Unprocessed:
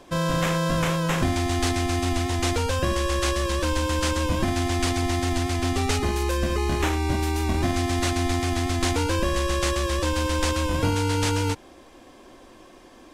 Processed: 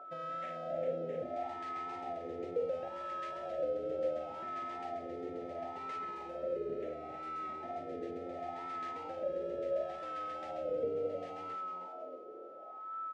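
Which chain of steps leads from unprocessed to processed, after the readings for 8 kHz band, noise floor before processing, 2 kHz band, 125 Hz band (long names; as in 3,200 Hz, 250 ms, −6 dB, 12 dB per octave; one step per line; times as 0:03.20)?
below −35 dB, −49 dBFS, −24.0 dB, −32.0 dB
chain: elliptic band-stop filter 650–1,800 Hz, stop band 40 dB
flanger 1.5 Hz, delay 4.1 ms, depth 8.3 ms, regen −69%
downward compressor, threshold −30 dBFS, peak gain reduction 7.5 dB
on a send: echo with shifted repeats 314 ms, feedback 49%, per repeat +83 Hz, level −9 dB
on the sum: steady tone 1,300 Hz −40 dBFS
LFO wah 0.71 Hz 450–1,100 Hz, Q 6.6
tape wow and flutter 23 cents
dynamic equaliser 370 Hz, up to −5 dB, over −58 dBFS, Q 1.5
high-pass filter 120 Hz 6 dB per octave
high-shelf EQ 5,400 Hz −9.5 dB
level +11 dB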